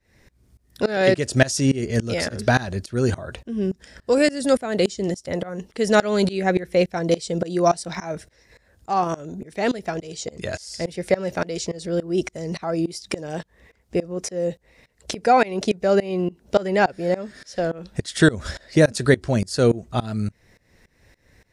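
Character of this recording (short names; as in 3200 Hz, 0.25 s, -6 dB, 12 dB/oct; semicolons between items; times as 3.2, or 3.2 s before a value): tremolo saw up 3.5 Hz, depth 95%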